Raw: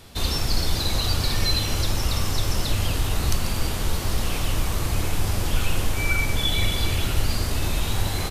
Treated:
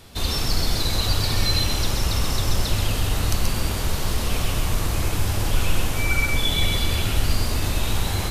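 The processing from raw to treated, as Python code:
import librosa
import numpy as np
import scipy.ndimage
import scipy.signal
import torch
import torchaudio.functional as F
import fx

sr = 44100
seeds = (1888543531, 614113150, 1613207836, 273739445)

y = x + 10.0 ** (-4.0 / 20.0) * np.pad(x, (int(130 * sr / 1000.0), 0))[:len(x)]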